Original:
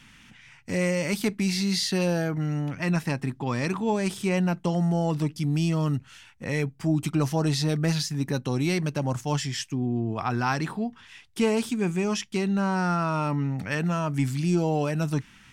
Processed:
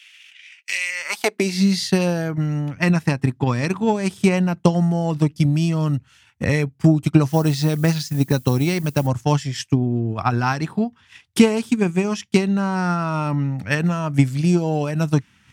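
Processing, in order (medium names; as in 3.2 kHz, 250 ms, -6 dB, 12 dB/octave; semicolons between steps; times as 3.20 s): 7.28–9.06 s: added noise violet -44 dBFS; transient shaper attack +11 dB, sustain -7 dB; high-pass sweep 2.6 kHz -> 82 Hz, 0.86–1.84 s; trim +2.5 dB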